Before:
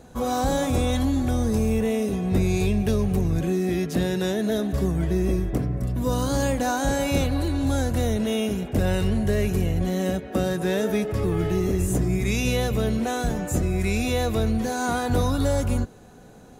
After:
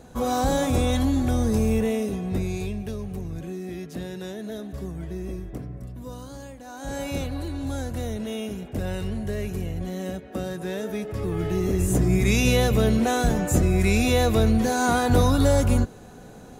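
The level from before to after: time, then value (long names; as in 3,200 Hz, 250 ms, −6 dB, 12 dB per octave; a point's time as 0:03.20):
0:01.77 +0.5 dB
0:02.94 −10 dB
0:05.75 −10 dB
0:06.63 −19 dB
0:06.97 −6.5 dB
0:10.94 −6.5 dB
0:12.18 +3.5 dB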